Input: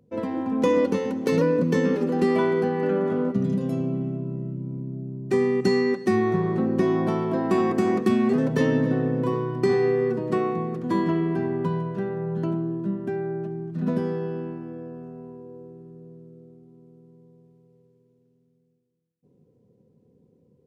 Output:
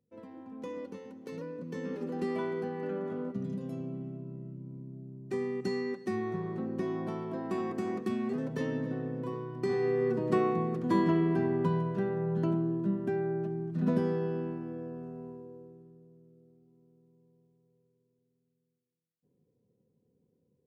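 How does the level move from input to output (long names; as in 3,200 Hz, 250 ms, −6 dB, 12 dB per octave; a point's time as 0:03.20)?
0:01.58 −20 dB
0:02.06 −12 dB
0:09.51 −12 dB
0:10.26 −3 dB
0:15.28 −3 dB
0:16.08 −13 dB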